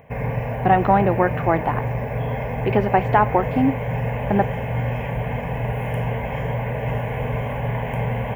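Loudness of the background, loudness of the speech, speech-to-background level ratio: -25.5 LUFS, -21.0 LUFS, 4.5 dB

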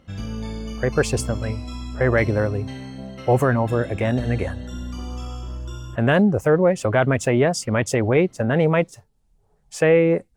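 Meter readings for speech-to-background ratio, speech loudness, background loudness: 12.5 dB, -20.5 LUFS, -33.0 LUFS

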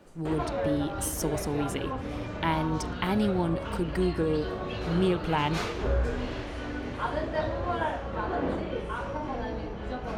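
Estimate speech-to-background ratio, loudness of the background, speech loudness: 3.0 dB, -33.0 LUFS, -30.0 LUFS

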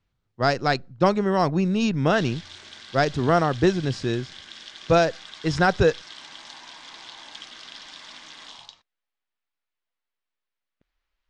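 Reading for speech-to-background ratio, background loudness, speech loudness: 18.0 dB, -41.0 LUFS, -23.0 LUFS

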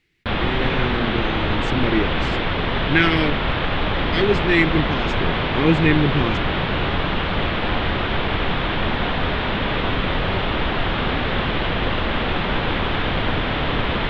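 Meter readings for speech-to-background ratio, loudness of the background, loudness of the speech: 0.0 dB, -22.0 LUFS, -22.0 LUFS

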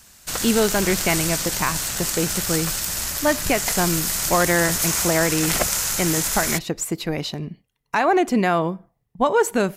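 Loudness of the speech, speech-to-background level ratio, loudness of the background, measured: -23.0 LUFS, -1.0 dB, -22.0 LUFS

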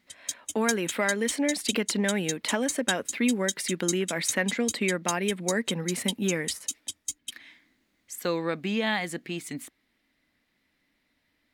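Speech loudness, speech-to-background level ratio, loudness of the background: -29.0 LUFS, 4.0 dB, -33.0 LUFS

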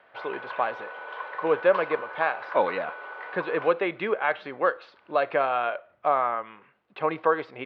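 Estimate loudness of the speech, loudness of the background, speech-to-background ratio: -27.0 LUFS, -37.0 LUFS, 10.0 dB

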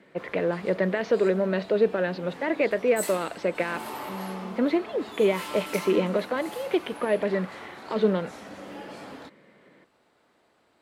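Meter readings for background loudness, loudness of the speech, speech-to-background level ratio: -40.0 LUFS, -26.5 LUFS, 13.5 dB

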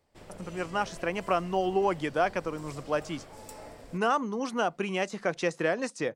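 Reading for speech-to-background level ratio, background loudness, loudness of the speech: 18.0 dB, -48.5 LUFS, -30.5 LUFS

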